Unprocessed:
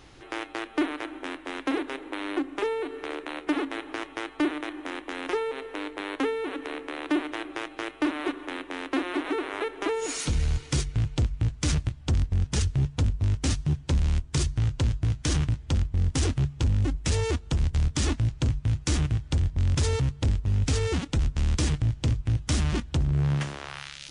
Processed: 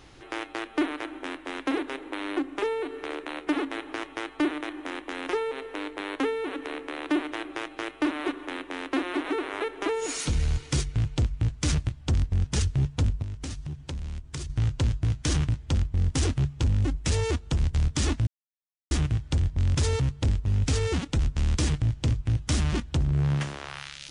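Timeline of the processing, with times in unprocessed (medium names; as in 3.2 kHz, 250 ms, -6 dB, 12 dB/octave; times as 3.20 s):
13.22–14.50 s: compression, threshold -32 dBFS
18.27–18.91 s: mute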